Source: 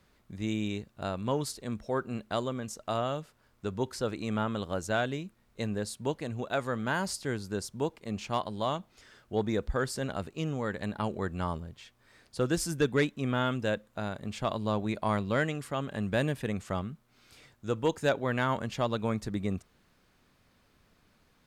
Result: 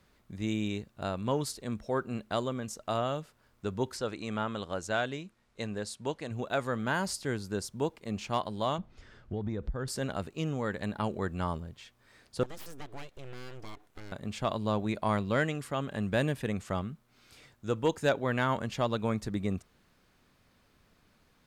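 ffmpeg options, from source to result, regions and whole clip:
-filter_complex "[0:a]asettb=1/sr,asplit=3[a][b][c];[a]atrim=end=3.974[d];[b]atrim=start=3.97:end=6.31,asetpts=PTS-STARTPTS,afade=t=in:d=0.004:c=qsin,afade=t=out:st=2.336:d=0.004:c=qsin,lowpass=9.3k,lowshelf=f=390:g=-5.5[e];[c]atrim=start=6.306[f];[d][e]acrossfade=d=0.004:c1=hsin:c2=qsin[g];[g][f]acrossfade=d=0.004:c1=qsin:c2=hsin,asettb=1/sr,asplit=3[h][i][j];[h]atrim=end=8.784[k];[i]atrim=start=8.78:end=9.88,asetpts=PTS-STARTPTS,afade=t=in:d=0.004:c=qsin,afade=t=out:st=1.096:d=0.004:c=qsin,aemphasis=mode=reproduction:type=bsi,acompressor=threshold=-29dB:ratio=10:attack=3.2:release=140:knee=1:detection=peak[l];[j]atrim=start=9.876[m];[k][l]acrossfade=d=0.004:c1=hsin:c2=qsin[n];[n][m]acrossfade=d=0.004:c1=qsin:c2=hsin,asettb=1/sr,asplit=3[o][p][q];[o]atrim=end=12.434[r];[p]atrim=start=12.43:end=14.12,asetpts=PTS-STARTPTS,afade=t=in:d=0.004:c=qsin,afade=t=out:st=1.686:d=0.004:c=qsin,acompressor=threshold=-42dB:ratio=3:attack=3.2:release=140:knee=1:detection=peak,aeval=exprs='abs(val(0))':c=same[s];[q]atrim=start=14.116[t];[r][s]acrossfade=d=0.004:c1=hsin:c2=qsin[u];[u][t]acrossfade=d=0.004:c1=qsin:c2=hsin"

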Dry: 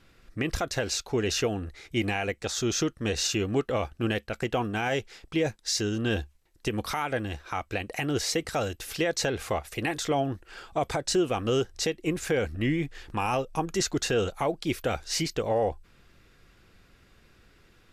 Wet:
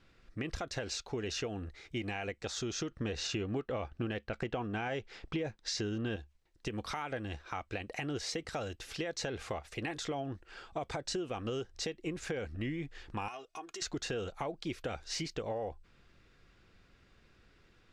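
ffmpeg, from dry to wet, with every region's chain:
-filter_complex "[0:a]asettb=1/sr,asplit=3[a][b][c];[a]atrim=end=2.914[d];[b]atrim=start=2.91:end=6.16,asetpts=PTS-STARTPTS,afade=t=in:d=0.004:c=qsin,afade=t=out:st=3.246:d=0.004:c=qsin,lowpass=f=3.4k:p=1,acontrast=87[e];[c]atrim=start=6.156[f];[d][e]acrossfade=d=0.004:c1=hsin:c2=qsin[g];[g][f]acrossfade=d=0.004:c1=qsin:c2=hsin,asettb=1/sr,asplit=3[h][i][j];[h]atrim=end=13.284[k];[i]atrim=start=13.28:end=13.82,asetpts=PTS-STARTPTS,afade=t=in:d=0.004:c=qsin,afade=t=out:st=0.536:d=0.004:c=qsin,acompressor=threshold=-31dB:ratio=6:attack=3.2:release=140:knee=1:detection=peak,highpass=f=960:p=1,aecho=1:1:2.8:0.76,atrim=end_sample=23814[l];[j]atrim=start=13.816[m];[k][l]acrossfade=d=0.004:c1=hsin:c2=qsin[n];[n][m]acrossfade=d=0.004:c1=qsin:c2=hsin,lowpass=6.5k,acompressor=threshold=-28dB:ratio=6,volume=-5.5dB"

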